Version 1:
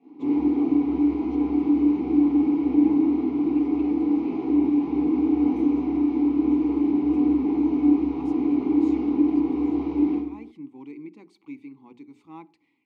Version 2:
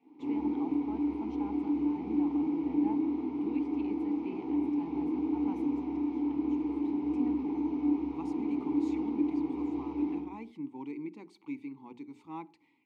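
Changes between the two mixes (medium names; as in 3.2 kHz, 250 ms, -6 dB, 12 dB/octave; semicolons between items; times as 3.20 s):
background: send -10.0 dB; master: remove band-stop 910 Hz, Q 8.2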